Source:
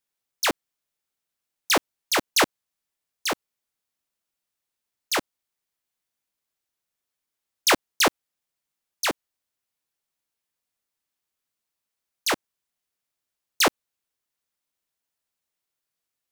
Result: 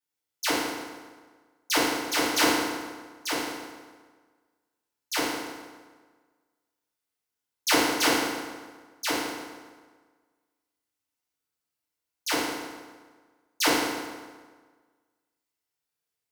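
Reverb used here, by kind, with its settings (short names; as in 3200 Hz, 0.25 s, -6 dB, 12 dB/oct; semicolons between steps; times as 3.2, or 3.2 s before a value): FDN reverb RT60 1.5 s, low-frequency decay 1×, high-frequency decay 0.75×, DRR -9.5 dB; gain -11 dB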